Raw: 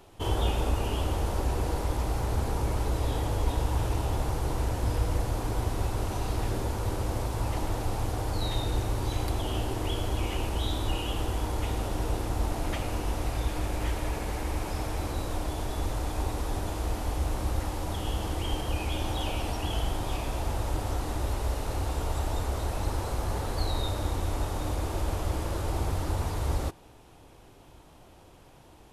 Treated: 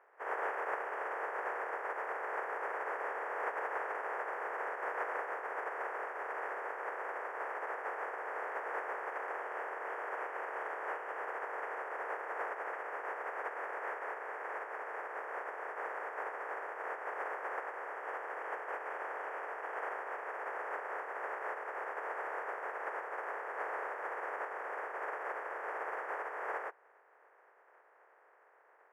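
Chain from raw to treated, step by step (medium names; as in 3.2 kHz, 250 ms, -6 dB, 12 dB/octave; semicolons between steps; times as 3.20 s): spectral contrast reduction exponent 0.22; elliptic band-pass 430–1800 Hz, stop band 40 dB; trim -3.5 dB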